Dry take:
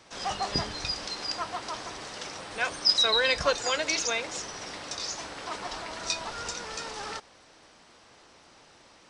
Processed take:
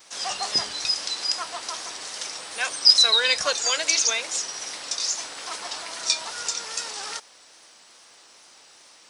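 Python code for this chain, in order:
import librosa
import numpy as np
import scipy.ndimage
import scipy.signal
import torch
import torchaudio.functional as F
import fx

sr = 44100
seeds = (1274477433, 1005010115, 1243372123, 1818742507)

y = fx.vibrato(x, sr, rate_hz=2.4, depth_cents=54.0)
y = fx.riaa(y, sr, side='recording')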